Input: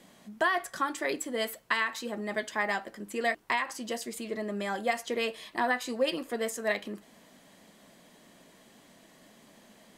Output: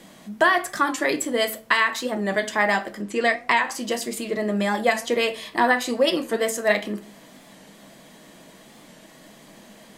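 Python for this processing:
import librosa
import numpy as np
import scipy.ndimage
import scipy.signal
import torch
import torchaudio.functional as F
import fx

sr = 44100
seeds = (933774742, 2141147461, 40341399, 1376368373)

y = fx.lowpass(x, sr, hz=fx.line((3.01, 6300.0), (3.64, 12000.0)), slope=12, at=(3.01, 3.64), fade=0.02)
y = fx.room_shoebox(y, sr, seeds[0], volume_m3=280.0, walls='furnished', distance_m=0.63)
y = fx.record_warp(y, sr, rpm=45.0, depth_cents=100.0)
y = F.gain(torch.from_numpy(y), 8.5).numpy()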